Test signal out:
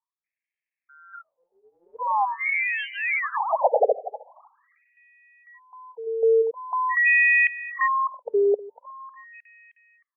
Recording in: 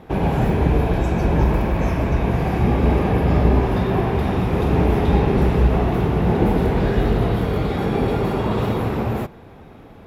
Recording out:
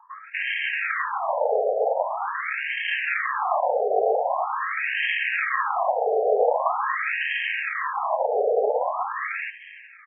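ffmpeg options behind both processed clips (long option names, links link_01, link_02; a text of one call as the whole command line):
ffmpeg -i in.wav -filter_complex "[0:a]asplit=2[link_01][link_02];[link_02]adelay=311,lowpass=frequency=4300:poles=1,volume=-16.5dB,asplit=2[link_03][link_04];[link_04]adelay=311,lowpass=frequency=4300:poles=1,volume=0.43,asplit=2[link_05][link_06];[link_06]adelay=311,lowpass=frequency=4300:poles=1,volume=0.43,asplit=2[link_07][link_08];[link_08]adelay=311,lowpass=frequency=4300:poles=1,volume=0.43[link_09];[link_03][link_05][link_07][link_09]amix=inputs=4:normalize=0[link_10];[link_01][link_10]amix=inputs=2:normalize=0,acrusher=samples=30:mix=1:aa=0.000001,acrossover=split=990[link_11][link_12];[link_12]adelay=240[link_13];[link_11][link_13]amix=inputs=2:normalize=0,afftfilt=real='re*between(b*sr/1024,560*pow(2300/560,0.5+0.5*sin(2*PI*0.44*pts/sr))/1.41,560*pow(2300/560,0.5+0.5*sin(2*PI*0.44*pts/sr))*1.41)':imag='im*between(b*sr/1024,560*pow(2300/560,0.5+0.5*sin(2*PI*0.44*pts/sr))/1.41,560*pow(2300/560,0.5+0.5*sin(2*PI*0.44*pts/sr))*1.41)':win_size=1024:overlap=0.75,volume=8dB" out.wav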